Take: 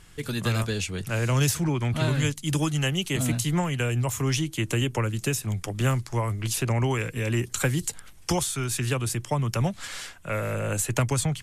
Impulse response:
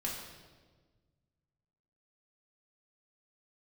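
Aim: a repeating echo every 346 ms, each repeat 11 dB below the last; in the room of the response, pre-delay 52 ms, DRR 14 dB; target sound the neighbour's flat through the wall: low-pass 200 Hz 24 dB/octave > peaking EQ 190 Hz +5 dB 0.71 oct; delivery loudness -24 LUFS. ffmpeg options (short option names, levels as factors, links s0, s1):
-filter_complex "[0:a]aecho=1:1:346|692|1038:0.282|0.0789|0.0221,asplit=2[s0][s1];[1:a]atrim=start_sample=2205,adelay=52[s2];[s1][s2]afir=irnorm=-1:irlink=0,volume=0.15[s3];[s0][s3]amix=inputs=2:normalize=0,lowpass=f=200:w=0.5412,lowpass=f=200:w=1.3066,equalizer=f=190:t=o:w=0.71:g=5,volume=1.5"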